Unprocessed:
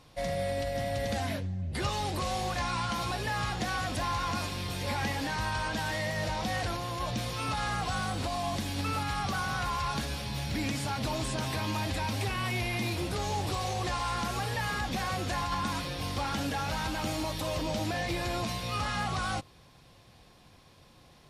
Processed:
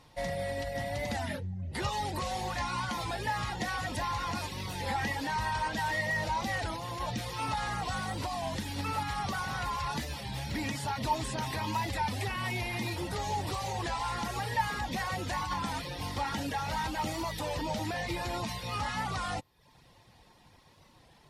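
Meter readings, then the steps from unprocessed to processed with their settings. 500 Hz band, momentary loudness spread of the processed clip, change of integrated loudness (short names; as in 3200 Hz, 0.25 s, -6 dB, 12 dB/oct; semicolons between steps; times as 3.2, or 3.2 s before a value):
-2.5 dB, 4 LU, -1.5 dB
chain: reverb removal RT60 0.57 s; small resonant body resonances 900/1900 Hz, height 13 dB, ringing for 70 ms; record warp 33 1/3 rpm, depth 100 cents; gain -1.5 dB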